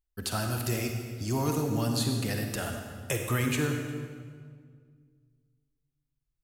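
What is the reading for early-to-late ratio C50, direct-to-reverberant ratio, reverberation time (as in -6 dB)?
3.5 dB, 3.0 dB, 1.8 s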